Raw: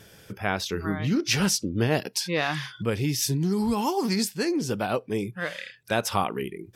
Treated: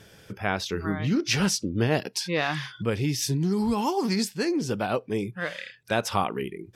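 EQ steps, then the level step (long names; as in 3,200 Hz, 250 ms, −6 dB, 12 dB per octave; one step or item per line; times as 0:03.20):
high-shelf EQ 11,000 Hz −10.5 dB
0.0 dB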